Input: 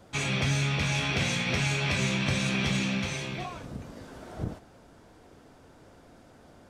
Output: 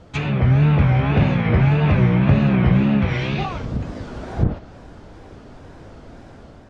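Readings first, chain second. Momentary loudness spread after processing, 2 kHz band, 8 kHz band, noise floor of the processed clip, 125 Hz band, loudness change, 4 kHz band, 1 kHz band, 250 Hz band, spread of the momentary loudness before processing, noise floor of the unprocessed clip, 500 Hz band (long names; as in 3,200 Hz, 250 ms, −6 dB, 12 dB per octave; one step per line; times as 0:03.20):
12 LU, +1.5 dB, below −15 dB, −43 dBFS, +14.5 dB, +10.0 dB, −4.0 dB, +9.5 dB, +13.0 dB, 16 LU, −55 dBFS, +10.5 dB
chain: treble cut that deepens with the level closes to 1,300 Hz, closed at −25 dBFS
low-shelf EQ 110 Hz +9.5 dB
automatic gain control gain up to 5 dB
tape wow and flutter 140 cents
high-frequency loss of the air 75 metres
level +6 dB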